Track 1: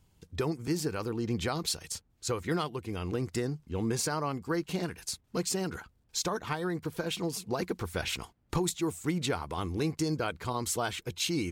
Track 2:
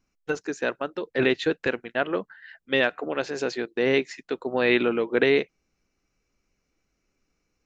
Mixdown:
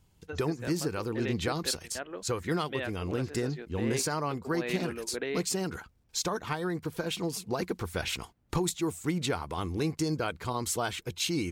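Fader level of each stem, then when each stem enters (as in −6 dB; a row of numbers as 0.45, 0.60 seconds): +0.5, −14.0 decibels; 0.00, 0.00 seconds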